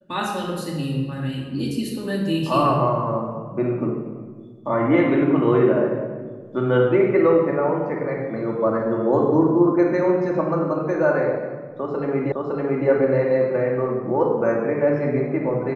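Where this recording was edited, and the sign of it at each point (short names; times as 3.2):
12.32 repeat of the last 0.56 s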